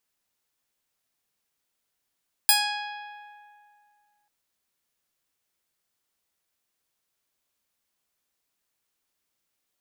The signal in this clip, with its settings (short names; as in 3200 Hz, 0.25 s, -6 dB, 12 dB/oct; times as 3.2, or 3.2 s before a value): plucked string G#5, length 1.79 s, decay 2.30 s, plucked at 0.42, bright